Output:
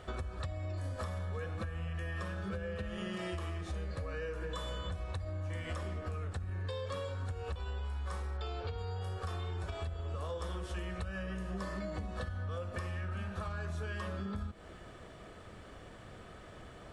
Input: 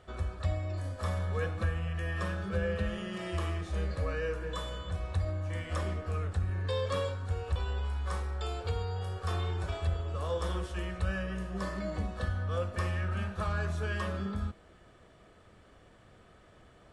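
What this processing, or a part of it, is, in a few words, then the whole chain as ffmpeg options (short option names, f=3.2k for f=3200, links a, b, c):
serial compression, peaks first: -filter_complex "[0:a]acompressor=threshold=-39dB:ratio=6,acompressor=threshold=-44dB:ratio=2.5,asettb=1/sr,asplit=3[a][b][c];[a]atrim=end=8.374[d];[b]atrim=start=8.37:end=8.78,asetpts=PTS-STARTPTS,afade=t=in:d=0.004:c=qsin,afade=t=out:st=0.406:d=0.004:c=qsin,lowpass=f=5.6k:w=0.5412,lowpass=f=5.6k:w=1.3066[e];[c]atrim=start=8.776[f];[d][e]acrossfade=d=0.004:c1=hsin:c2=qsin[g];[g][f]acrossfade=d=0.004:c1=qsin:c2=hsin,volume=7dB"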